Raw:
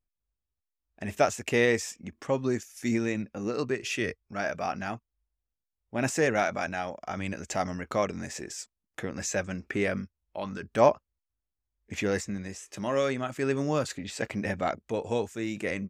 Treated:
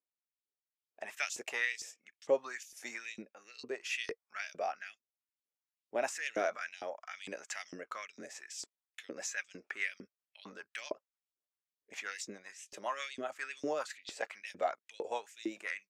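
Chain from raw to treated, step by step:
rotating-speaker cabinet horn 0.65 Hz, later 7.5 Hz, at 0:08.54
0:06.12–0:06.81: transient designer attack −5 dB, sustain +8 dB
auto-filter high-pass saw up 2.2 Hz 340–4,600 Hz
level −5.5 dB

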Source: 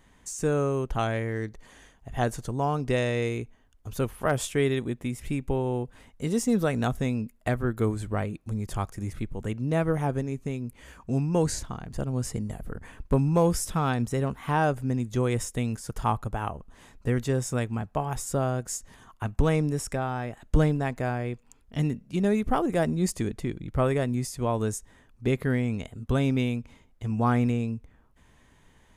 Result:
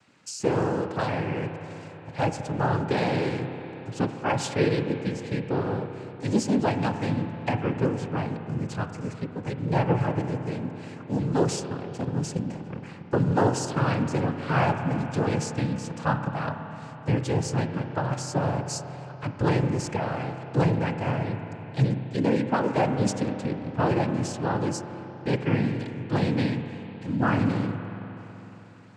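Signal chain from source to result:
cochlear-implant simulation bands 8
spring reverb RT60 3.8 s, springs 31/46 ms, chirp 80 ms, DRR 7 dB
level +1 dB

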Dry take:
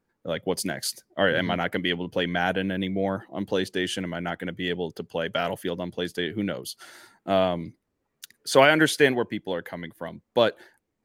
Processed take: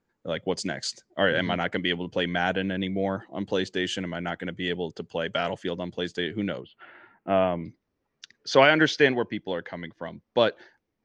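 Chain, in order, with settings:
elliptic low-pass filter 7,400 Hz, stop band 60 dB, from 0:06.60 2,800 Hz, from 0:07.64 5,900 Hz

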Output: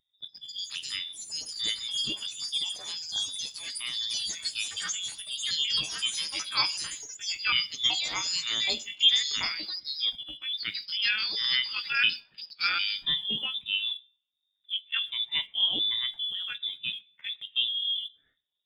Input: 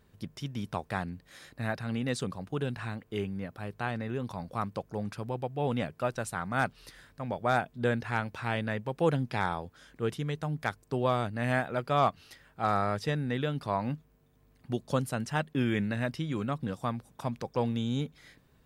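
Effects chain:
pitch shifter gated in a rhythm +10 semitones, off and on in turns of 376 ms
hum removal 65.18 Hz, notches 25
on a send: delay with a high-pass on its return 127 ms, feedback 50%, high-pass 1,700 Hz, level −19 dB
on the sum: voice inversion scrambler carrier 3,700 Hz
delay with pitch and tempo change per echo 188 ms, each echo +6 semitones, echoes 3
reverb whose tail is shaped and stops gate 170 ms falling, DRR 10.5 dB
in parallel at −9.5 dB: bit-depth reduction 6 bits, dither none
on the sum: parametric band 150 Hz +8 dB 2.4 octaves
every bin expanded away from the loudest bin 1.5 to 1

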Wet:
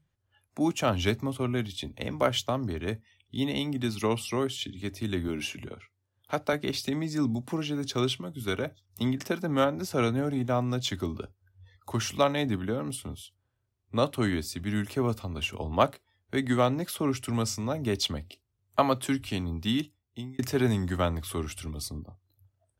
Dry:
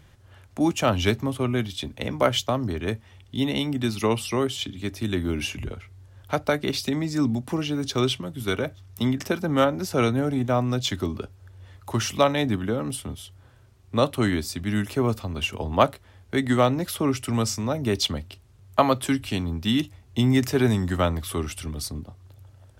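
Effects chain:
0:19.70–0:20.39: fade out
noise reduction from a noise print of the clip's start 20 dB
0:05.28–0:06.53: high-pass filter 140 Hz 12 dB per octave
level −4.5 dB

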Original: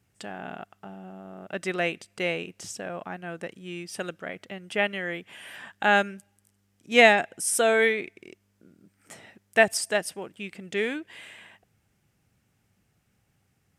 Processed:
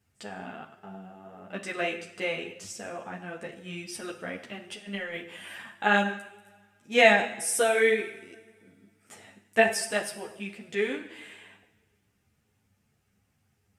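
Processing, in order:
0:03.53–0:05.62: compressor whose output falls as the input rises −33 dBFS, ratio −0.5
coupled-rooms reverb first 0.78 s, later 2.2 s, DRR 6.5 dB
string-ensemble chorus

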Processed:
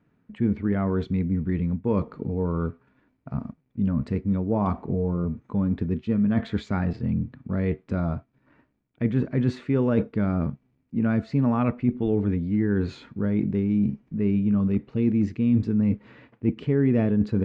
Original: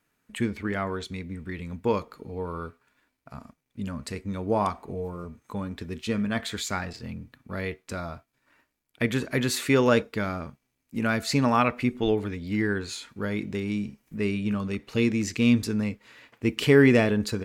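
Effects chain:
parametric band 160 Hz +11 dB 2.5 octaves
reversed playback
downward compressor 4 to 1, threshold −25 dBFS, peak gain reduction 16 dB
reversed playback
head-to-tape spacing loss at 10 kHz 36 dB
level +5 dB

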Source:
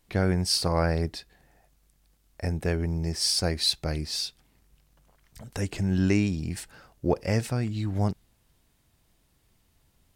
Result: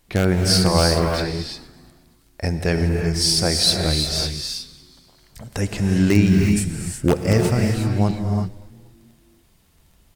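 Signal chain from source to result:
0:06.51–0:07.33: graphic EQ with 10 bands 125 Hz +5 dB, 250 Hz +3 dB, 1,000 Hz −4 dB, 4,000 Hz −4 dB, 8,000 Hz +8 dB
in parallel at −10 dB: wrap-around overflow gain 12.5 dB
on the sum: reverb whose tail is shaped and stops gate 390 ms rising, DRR 2.5 dB
surface crackle 14 per second −49 dBFS
on a send: echo with shifted repeats 238 ms, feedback 52%, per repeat −110 Hz, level −21 dB
0:01.18–0:02.89: on the sum: dynamic equaliser 4,200 Hz, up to +7 dB, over −52 dBFS, Q 1
level +4 dB

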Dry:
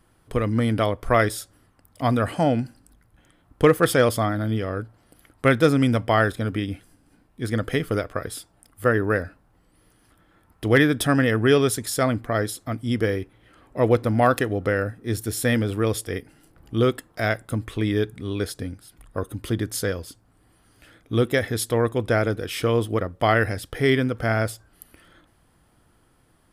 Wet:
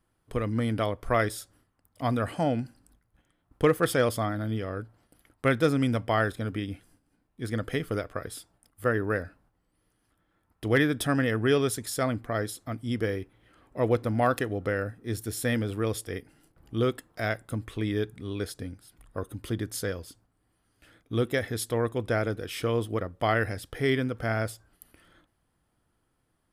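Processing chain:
noise gate −55 dBFS, range −7 dB
level −6 dB

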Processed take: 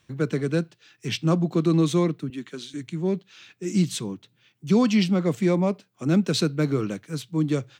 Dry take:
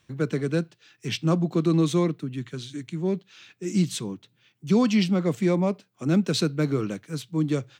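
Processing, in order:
0:02.30–0:02.74: high-pass filter 200 Hz 24 dB per octave
level +1 dB

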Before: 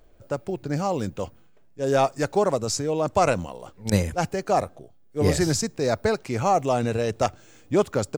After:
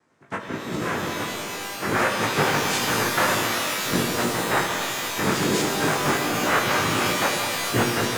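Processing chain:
cochlear-implant simulation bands 3
chorus effect 1.4 Hz, delay 16.5 ms, depth 4.8 ms
reverb with rising layers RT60 2.9 s, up +12 semitones, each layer −2 dB, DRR 1.5 dB

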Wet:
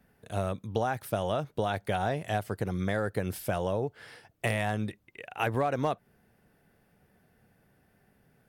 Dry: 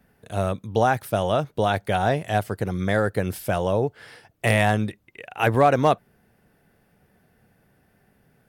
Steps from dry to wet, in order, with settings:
downward compressor 5 to 1, threshold −21 dBFS, peak gain reduction 8.5 dB
level −4 dB

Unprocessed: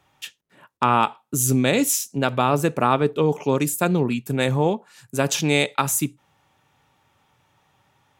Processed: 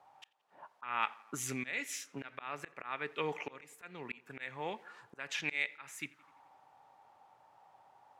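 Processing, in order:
low-shelf EQ 190 Hz +6.5 dB
bit-depth reduction 10 bits, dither triangular
envelope filter 780–2,000 Hz, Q 3.5, up, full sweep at −17.5 dBFS
volume swells 455 ms
on a send: tape delay 85 ms, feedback 72%, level −22 dB, low-pass 3,400 Hz
on the sum: level +6 dB

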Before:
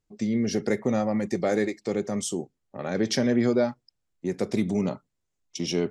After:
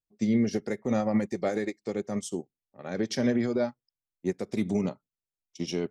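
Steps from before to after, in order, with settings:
brickwall limiter −18 dBFS, peak gain reduction 6.5 dB
expander for the loud parts 2.5 to 1, over −37 dBFS
level +3 dB

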